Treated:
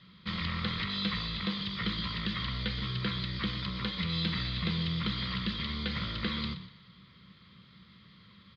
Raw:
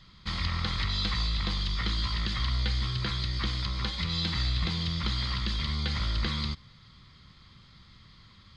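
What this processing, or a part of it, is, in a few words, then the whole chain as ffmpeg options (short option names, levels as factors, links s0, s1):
frequency-shifting delay pedal into a guitar cabinet: -filter_complex "[0:a]aemphasis=mode=production:type=cd,asplit=5[s0][s1][s2][s3][s4];[s1]adelay=122,afreqshift=-38,volume=0.224[s5];[s2]adelay=244,afreqshift=-76,volume=0.0851[s6];[s3]adelay=366,afreqshift=-114,volume=0.0324[s7];[s4]adelay=488,afreqshift=-152,volume=0.0123[s8];[s0][s5][s6][s7][s8]amix=inputs=5:normalize=0,highpass=99,equalizer=f=190:t=q:w=4:g=9,equalizer=f=470:t=q:w=4:g=5,equalizer=f=810:t=q:w=4:g=-8,lowpass=f=3600:w=0.5412,lowpass=f=3600:w=1.3066,bandreject=f=50:t=h:w=6,bandreject=f=100:t=h:w=6,bandreject=f=150:t=h:w=6,volume=0.841"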